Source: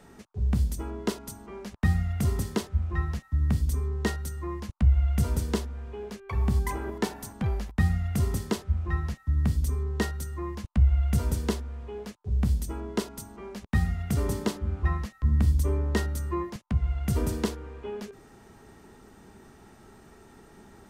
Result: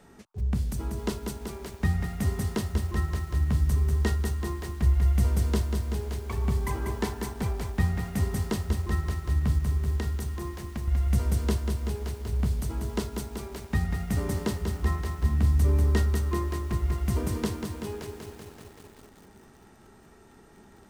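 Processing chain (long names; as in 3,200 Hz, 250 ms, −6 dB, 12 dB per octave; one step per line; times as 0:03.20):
0:09.58–0:10.88: downward compressor 16 to 1, threshold −29 dBFS, peak gain reduction 14.5 dB
feedback echo at a low word length 191 ms, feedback 80%, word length 8 bits, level −6 dB
level −2 dB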